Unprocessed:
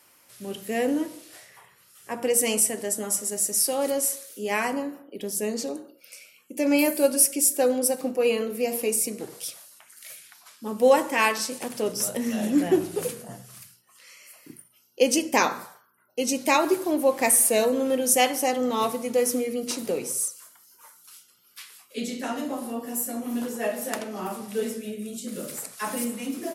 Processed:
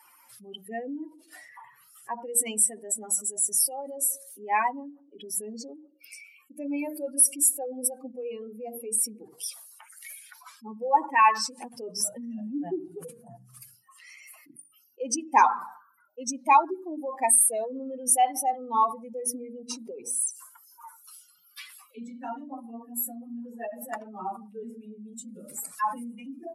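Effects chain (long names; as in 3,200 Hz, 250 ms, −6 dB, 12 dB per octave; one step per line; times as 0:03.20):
expanding power law on the bin magnitudes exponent 2.4
low shelf with overshoot 690 Hz −7.5 dB, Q 3
mains-hum notches 50/100/150/200/250/300 Hz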